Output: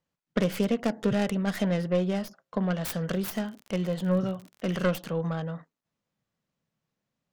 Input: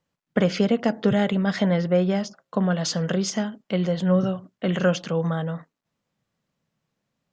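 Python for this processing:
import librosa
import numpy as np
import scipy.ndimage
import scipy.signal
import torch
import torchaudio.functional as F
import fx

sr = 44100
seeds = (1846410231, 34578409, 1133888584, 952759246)

y = fx.tracing_dist(x, sr, depth_ms=0.42)
y = fx.dmg_crackle(y, sr, seeds[0], per_s=33.0, level_db=-30.0, at=(3.08, 4.81), fade=0.02)
y = y * 10.0 ** (-5.5 / 20.0)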